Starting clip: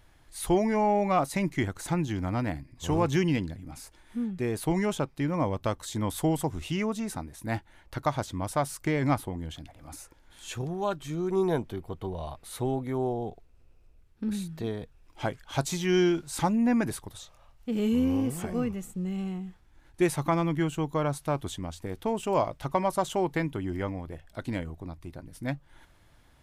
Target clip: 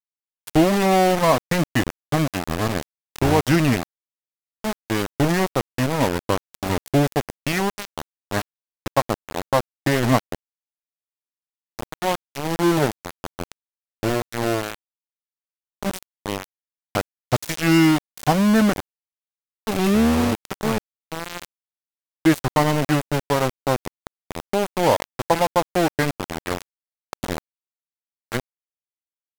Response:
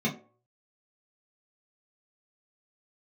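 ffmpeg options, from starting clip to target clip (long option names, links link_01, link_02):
-af "aeval=exprs='val(0)*gte(abs(val(0)),0.0501)':channel_layout=same,asetrate=39646,aresample=44100,volume=8dB"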